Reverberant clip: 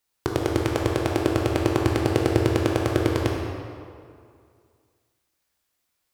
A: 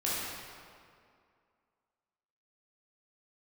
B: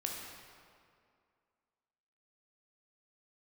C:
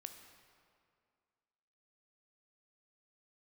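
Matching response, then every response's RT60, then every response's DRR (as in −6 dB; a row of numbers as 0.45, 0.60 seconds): B; 2.3, 2.3, 2.2 seconds; −8.5, −1.0, 6.0 decibels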